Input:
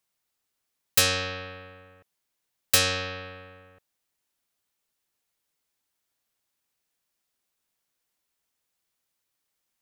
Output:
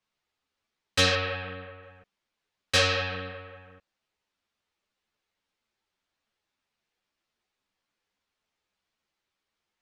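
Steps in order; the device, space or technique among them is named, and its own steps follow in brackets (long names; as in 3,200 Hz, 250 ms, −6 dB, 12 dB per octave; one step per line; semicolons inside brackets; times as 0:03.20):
string-machine ensemble chorus (string-ensemble chorus; low-pass filter 4,100 Hz 12 dB per octave)
0:01.15–0:01.83: low-pass filter 4,000 Hz 12 dB per octave
level +5.5 dB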